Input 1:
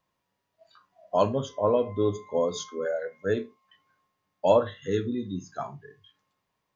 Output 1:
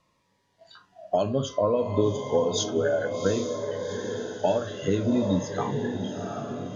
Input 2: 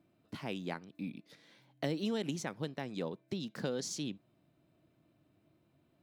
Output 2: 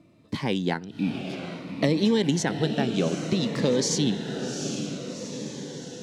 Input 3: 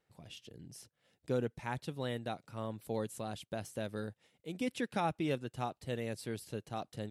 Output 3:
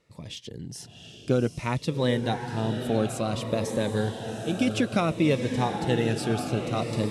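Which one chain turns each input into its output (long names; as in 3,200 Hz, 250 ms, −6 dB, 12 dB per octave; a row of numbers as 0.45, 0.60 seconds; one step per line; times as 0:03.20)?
low-pass filter 8,500 Hz 12 dB per octave
downward compressor 10 to 1, threshold −30 dBFS
on a send: feedback delay with all-pass diffusion 768 ms, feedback 60%, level −7 dB
on the sum: phaser whose notches keep moving one way falling 0.58 Hz
loudness normalisation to −27 LKFS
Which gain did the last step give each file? +11.0, +14.5, +13.5 decibels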